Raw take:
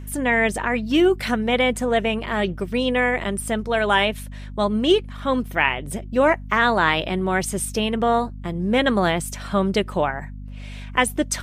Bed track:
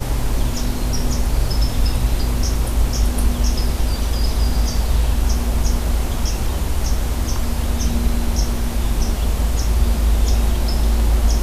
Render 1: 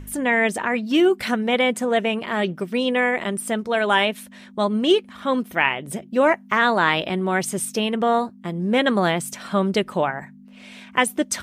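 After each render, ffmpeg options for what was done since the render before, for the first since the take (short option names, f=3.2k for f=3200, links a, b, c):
-af "bandreject=f=50:t=h:w=4,bandreject=f=100:t=h:w=4,bandreject=f=150:t=h:w=4"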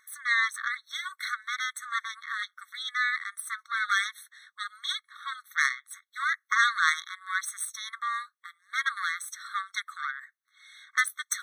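-af "aeval=exprs='0.708*(cos(1*acos(clip(val(0)/0.708,-1,1)))-cos(1*PI/2))+0.0891*(cos(3*acos(clip(val(0)/0.708,-1,1)))-cos(3*PI/2))+0.0631*(cos(6*acos(clip(val(0)/0.708,-1,1)))-cos(6*PI/2))':c=same,afftfilt=real='re*eq(mod(floor(b*sr/1024/1100),2),1)':imag='im*eq(mod(floor(b*sr/1024/1100),2),1)':win_size=1024:overlap=0.75"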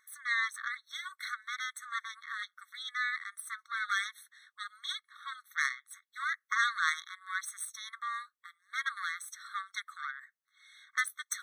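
-af "volume=-6dB"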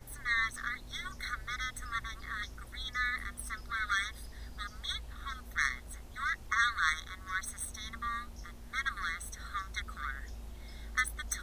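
-filter_complex "[1:a]volume=-29dB[a];[0:a][a]amix=inputs=2:normalize=0"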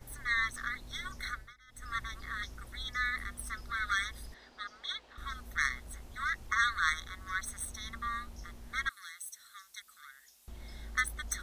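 -filter_complex "[0:a]asettb=1/sr,asplit=3[a][b][c];[a]atrim=end=4.344[d];[b]atrim=start=4.34:end=5.18,asetpts=PTS-STARTPTS,afade=t=in:d=0.004:c=qsin,afade=t=out:st=0.836:d=0.004:c=qsin,acrossover=split=280 5800:gain=0.0708 1 0.1[e][f][g];[e][f][g]amix=inputs=3:normalize=0[h];[c]atrim=start=5.176[i];[d][h]acrossfade=d=0.004:c1=hsin:c2=qsin[j];[j][i]acrossfade=d=0.004:c1=qsin:c2=hsin,asettb=1/sr,asplit=3[k][l][m];[k]atrim=end=8.894[n];[l]atrim=start=8.89:end=10.48,asetpts=PTS-STARTPTS,afade=t=in:d=0.004:c=qsin,afade=t=out:st=1.586:d=0.004:c=qsin,aderivative[o];[m]atrim=start=10.476[p];[n][o]acrossfade=d=0.004:c1=hsin:c2=qsin[q];[q][p]acrossfade=d=0.004:c1=qsin:c2=hsin,asplit=3[r][s][t];[r]atrim=end=1.54,asetpts=PTS-STARTPTS,afade=t=out:st=1.29:d=0.25:silence=0.0668344[u];[s]atrim=start=1.54:end=1.67,asetpts=PTS-STARTPTS,volume=-23.5dB[v];[t]atrim=start=1.67,asetpts=PTS-STARTPTS,afade=t=in:d=0.25:silence=0.0668344[w];[u][v][w]concat=n=3:v=0:a=1"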